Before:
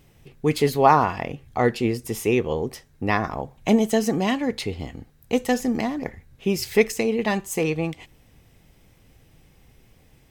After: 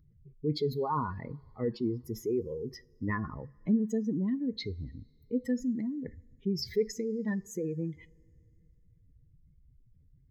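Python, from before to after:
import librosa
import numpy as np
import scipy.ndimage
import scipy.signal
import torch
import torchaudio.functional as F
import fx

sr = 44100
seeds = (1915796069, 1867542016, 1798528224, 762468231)

y = fx.spec_expand(x, sr, power=2.4)
y = fx.fixed_phaser(y, sr, hz=2700.0, stages=6)
y = fx.rev_double_slope(y, sr, seeds[0], early_s=0.26, late_s=2.8, knee_db=-21, drr_db=17.5)
y = F.gain(torch.from_numpy(y), -6.0).numpy()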